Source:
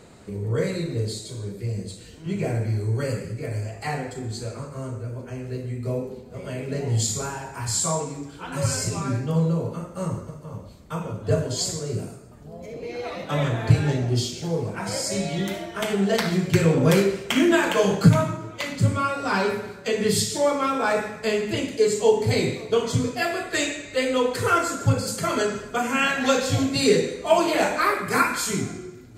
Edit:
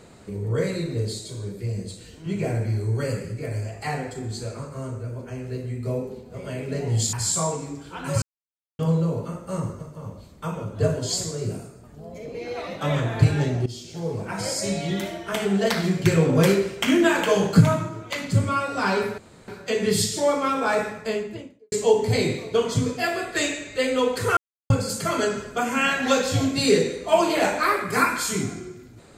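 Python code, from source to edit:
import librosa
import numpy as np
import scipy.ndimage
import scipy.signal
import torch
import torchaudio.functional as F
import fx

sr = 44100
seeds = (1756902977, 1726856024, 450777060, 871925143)

y = fx.studio_fade_out(x, sr, start_s=21.02, length_s=0.88)
y = fx.edit(y, sr, fx.cut(start_s=7.13, length_s=0.48),
    fx.silence(start_s=8.7, length_s=0.57),
    fx.fade_in_from(start_s=14.14, length_s=0.62, floor_db=-15.5),
    fx.insert_room_tone(at_s=19.66, length_s=0.3),
    fx.silence(start_s=24.55, length_s=0.33), tone=tone)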